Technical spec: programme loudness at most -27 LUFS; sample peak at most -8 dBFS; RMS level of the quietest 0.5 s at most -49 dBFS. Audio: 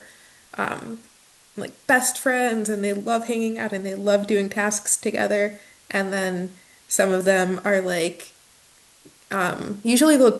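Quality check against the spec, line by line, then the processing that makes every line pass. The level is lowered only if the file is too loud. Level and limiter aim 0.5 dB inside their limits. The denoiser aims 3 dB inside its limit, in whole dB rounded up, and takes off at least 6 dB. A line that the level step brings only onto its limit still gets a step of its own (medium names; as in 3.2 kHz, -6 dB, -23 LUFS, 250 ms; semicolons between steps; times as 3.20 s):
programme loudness -22.0 LUFS: fail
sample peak -5.0 dBFS: fail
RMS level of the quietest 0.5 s -54 dBFS: pass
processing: trim -5.5 dB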